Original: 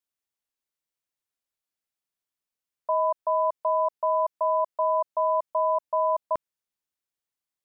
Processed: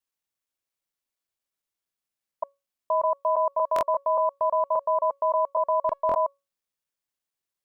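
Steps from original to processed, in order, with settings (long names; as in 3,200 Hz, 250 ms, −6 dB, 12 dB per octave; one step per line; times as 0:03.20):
slices reordered back to front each 116 ms, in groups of 5
tuned comb filter 560 Hz, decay 0.26 s, harmonics all, mix 50%
buffer that repeats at 0:03.74/0:06.07, samples 1,024, times 2
level +6.5 dB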